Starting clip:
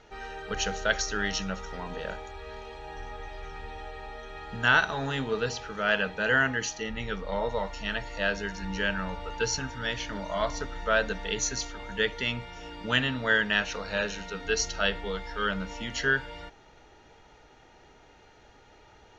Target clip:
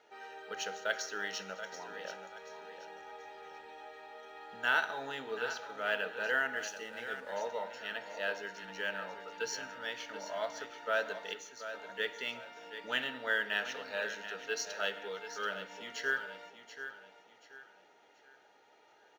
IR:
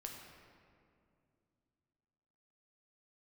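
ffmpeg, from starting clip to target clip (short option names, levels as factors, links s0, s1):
-filter_complex "[0:a]highpass=440,asettb=1/sr,asplit=3[s0][s1][s2];[s0]atrim=end=11.334[s3];[s1]atrim=start=11.33:end=11.74,asetpts=PTS-STARTPTS,afade=t=in:d=0.004:c=qsin,afade=t=out:st=0.406:d=0.004:c=qsin,acompressor=threshold=0.01:ratio=6[s4];[s2]atrim=start=11.736[s5];[s3][s4]acrossfade=d=0.004:c1=hsin:c2=qsin[s6];[s6][s5]acrossfade=d=0.004:c1=qsin:c2=hsin,highshelf=f=2100:g=-4.5,bandreject=f=1100:w=6.6,aecho=1:1:732|1464|2196|2928:0.282|0.093|0.0307|0.0101,asplit=2[s7][s8];[1:a]atrim=start_sample=2205,atrim=end_sample=6174,asetrate=31311,aresample=44100[s9];[s8][s9]afir=irnorm=-1:irlink=0,volume=0.501[s10];[s7][s10]amix=inputs=2:normalize=0,asettb=1/sr,asplit=3[s11][s12][s13];[s11]atrim=end=6.564[s14];[s12]atrim=start=6.56:end=7.36,asetpts=PTS-STARTPTS,afade=t=in:d=0.004:c=qsin,afade=t=out:st=0.796:d=0.004:c=qsin,aeval=exprs='sgn(val(0))*max(abs(val(0))-0.00237,0)':c=same[s15];[s13]atrim=start=7.356[s16];[s14][s15]acrossfade=d=0.004:c1=hsin:c2=qsin[s17];[s17][s16]acrossfade=d=0.004:c1=qsin:c2=hsin,volume=0.398" -ar 44100 -c:a adpcm_ima_wav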